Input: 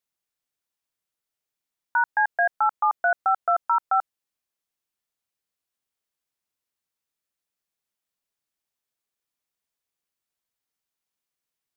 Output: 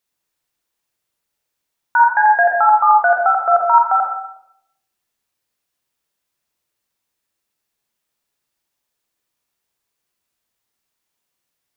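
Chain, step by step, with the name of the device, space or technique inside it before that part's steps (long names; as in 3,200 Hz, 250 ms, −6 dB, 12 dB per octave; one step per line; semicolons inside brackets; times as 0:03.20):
bathroom (convolution reverb RT60 0.75 s, pre-delay 37 ms, DRR 0 dB)
level +7 dB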